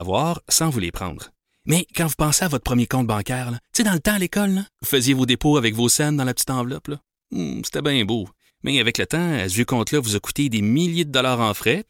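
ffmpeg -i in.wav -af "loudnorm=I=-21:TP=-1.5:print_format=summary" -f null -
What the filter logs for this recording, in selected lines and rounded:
Input Integrated:    -20.5 LUFS
Input True Peak:      -2.2 dBTP
Input LRA:             2.2 LU
Input Threshold:     -30.8 LUFS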